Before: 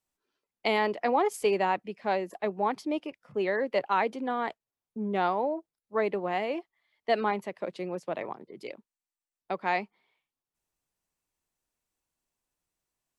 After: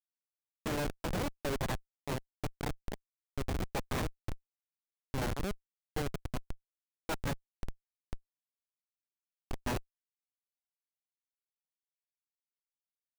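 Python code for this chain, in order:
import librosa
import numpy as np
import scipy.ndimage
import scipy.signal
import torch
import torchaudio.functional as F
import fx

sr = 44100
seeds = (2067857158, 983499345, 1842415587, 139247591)

y = fx.self_delay(x, sr, depth_ms=0.46)
y = fx.pitch_keep_formants(y, sr, semitones=-6.5)
y = fx.schmitt(y, sr, flips_db=-23.5)
y = y * librosa.db_to_amplitude(1.0)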